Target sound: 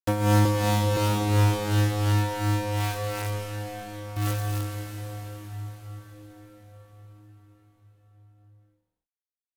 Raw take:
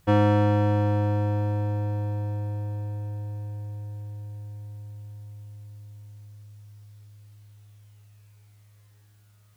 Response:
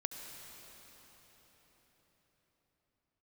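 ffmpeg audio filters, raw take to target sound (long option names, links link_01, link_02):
-filter_complex "[0:a]asettb=1/sr,asplit=3[link_01][link_02][link_03];[link_01]atrim=end=0.454[link_04];[link_02]atrim=start=0.45:end=0.97,asetpts=PTS-STARTPTS,afade=type=in:duration=0.004:curve=qsin,afade=type=out:start_time=0.516:duration=0.004:curve=qsin,highpass=frequency=250:width=0.5412,highpass=frequency=250:width=1.3066[link_05];[link_03]atrim=start=0.966[link_06];[link_04][link_05]acrossfade=duration=0.004:curve1=hsin:curve2=qsin[link_07];[link_07][link_06]acrossfade=duration=0.004:curve1=qsin:curve2=hsin,asplit=3[link_08][link_09][link_10];[link_08]afade=type=out:start_time=4.15:duration=0.02[link_11];[link_09]acontrast=43,afade=type=in:start_time=4.15:duration=0.02,afade=type=out:start_time=4.69:duration=0.02[link_12];[link_10]afade=type=in:start_time=4.69:duration=0.02[link_13];[link_11][link_12][link_13]amix=inputs=3:normalize=0,acrusher=bits=4:mix=0:aa=0.000001,asoftclip=type=tanh:threshold=-13.5dB,tremolo=f=2.8:d=0.74[link_14];[1:a]atrim=start_sample=2205,asetrate=31311,aresample=44100[link_15];[link_14][link_15]afir=irnorm=-1:irlink=0,volume=3.5dB"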